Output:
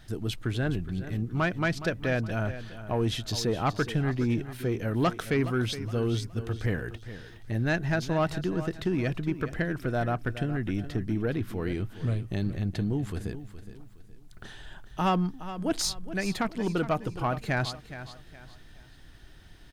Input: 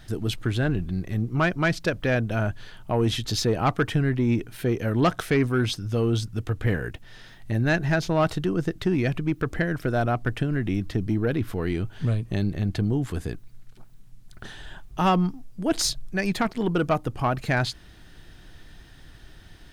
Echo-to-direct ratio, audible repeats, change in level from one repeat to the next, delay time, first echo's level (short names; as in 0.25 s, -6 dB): -12.5 dB, 3, -9.5 dB, 0.417 s, -13.0 dB